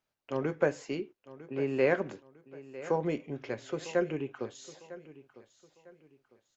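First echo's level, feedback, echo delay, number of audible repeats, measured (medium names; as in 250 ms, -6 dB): -17.0 dB, 33%, 952 ms, 2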